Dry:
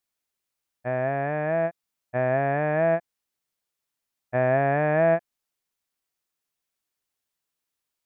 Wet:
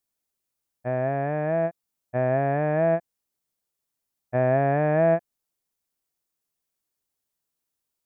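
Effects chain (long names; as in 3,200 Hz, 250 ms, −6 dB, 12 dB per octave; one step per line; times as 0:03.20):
parametric band 2,200 Hz −7 dB 2.7 octaves
level +2.5 dB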